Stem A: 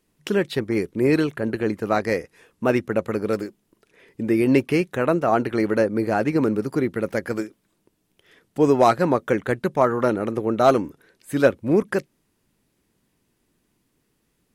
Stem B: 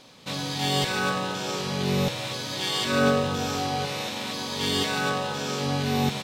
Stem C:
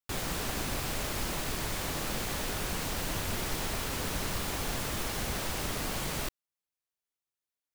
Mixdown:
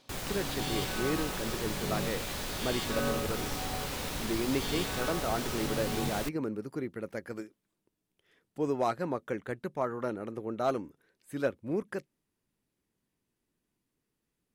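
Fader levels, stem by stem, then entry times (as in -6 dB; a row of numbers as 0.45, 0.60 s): -13.5, -11.5, -3.5 dB; 0.00, 0.00, 0.00 s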